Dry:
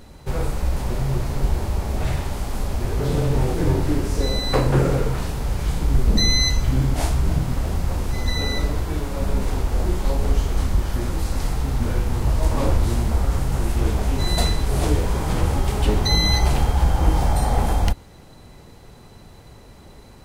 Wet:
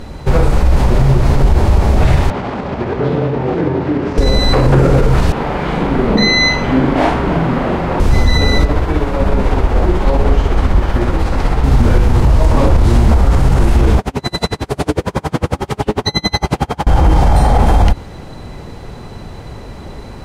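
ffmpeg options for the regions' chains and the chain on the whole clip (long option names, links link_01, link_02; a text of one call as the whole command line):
ffmpeg -i in.wav -filter_complex "[0:a]asettb=1/sr,asplit=3[link_01][link_02][link_03];[link_01]atrim=end=2.304[link_04];[link_02]atrim=start=2.3:end=4.18,asetpts=PTS-STARTPTS,afade=type=in:duration=0.004:curve=qsin,afade=type=out:start_time=1.876:duration=0.004:curve=qsin,acompressor=threshold=-22dB:ratio=6:attack=3.2:release=140:knee=1:detection=peak,highpass=160,lowpass=2800[link_05];[link_03]atrim=start=4.176[link_06];[link_04][link_05]acrossfade=duration=0.004:curve1=hsin:curve2=qsin[link_07];[link_07][link_06]acrossfade=duration=0.004:curve1=qsin:curve2=hsin,asettb=1/sr,asplit=3[link_08][link_09][link_10];[link_08]atrim=end=5.324[link_11];[link_09]atrim=start=5.32:end=8,asetpts=PTS-STARTPTS,afade=type=in:duration=0.004:curve=qsin,afade=type=out:start_time=2.676:duration=0.004:curve=qsin,acrossover=split=180 3300:gain=0.0891 1 0.126[link_12][link_13][link_14];[link_12][link_13][link_14]amix=inputs=3:normalize=0,asplit=2[link_15][link_16];[link_16]adelay=42,volume=-2.5dB[link_17];[link_15][link_17]amix=inputs=2:normalize=0,atrim=end_sample=118188[link_18];[link_10]atrim=start=7.996[link_19];[link_11][link_18]acrossfade=duration=0.004:curve1=hsin:curve2=qsin[link_20];[link_20][link_19]acrossfade=duration=0.004:curve1=qsin:curve2=hsin,asettb=1/sr,asplit=3[link_21][link_22][link_23];[link_21]atrim=end=8.654[link_24];[link_22]atrim=start=8.65:end=11.64,asetpts=PTS-STARTPTS,afade=type=in:duration=0.004:curve=qsin,afade=type=out:start_time=2.986:duration=0.004:curve=qsin,bass=frequency=250:gain=-5,treble=frequency=4000:gain=-9,tremolo=f=16:d=0.35[link_25];[link_23]atrim=start=11.636[link_26];[link_24][link_25]acrossfade=duration=0.004:curve1=hsin:curve2=qsin[link_27];[link_27][link_26]acrossfade=duration=0.004:curve1=qsin:curve2=hsin,asettb=1/sr,asplit=3[link_28][link_29][link_30];[link_28]atrim=end=13.994[link_31];[link_29]atrim=start=13.99:end=16.87,asetpts=PTS-STARTPTS,afade=type=in:duration=0.004:curve=qsin,afade=type=out:start_time=2.876:duration=0.004:curve=qsin,highpass=130,aeval=exprs='val(0)*pow(10,-36*(0.5-0.5*cos(2*PI*11*n/s))/20)':channel_layout=same[link_32];[link_30]atrim=start=16.866[link_33];[link_31][link_32]acrossfade=duration=0.004:curve1=hsin:curve2=qsin[link_34];[link_34][link_33]acrossfade=duration=0.004:curve1=qsin:curve2=hsin,aemphasis=mode=reproduction:type=50kf,alimiter=level_in=16dB:limit=-1dB:release=50:level=0:latency=1,volume=-1dB" out.wav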